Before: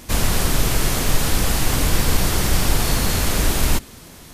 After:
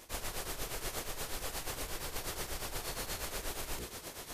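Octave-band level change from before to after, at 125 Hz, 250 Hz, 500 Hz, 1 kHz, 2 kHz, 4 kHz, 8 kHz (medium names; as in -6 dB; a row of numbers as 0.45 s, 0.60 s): -26.0 dB, -24.5 dB, -16.5 dB, -17.0 dB, -17.5 dB, -17.5 dB, -17.5 dB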